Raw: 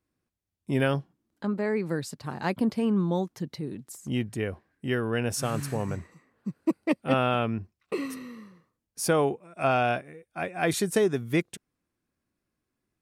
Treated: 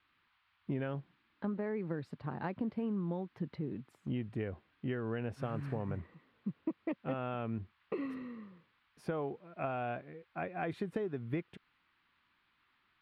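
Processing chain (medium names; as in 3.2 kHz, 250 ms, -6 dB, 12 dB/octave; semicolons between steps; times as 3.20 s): compression 12:1, threshold -29 dBFS, peak gain reduction 11.5 dB; band noise 980–4800 Hz -66 dBFS; distance through air 470 m; trim -2.5 dB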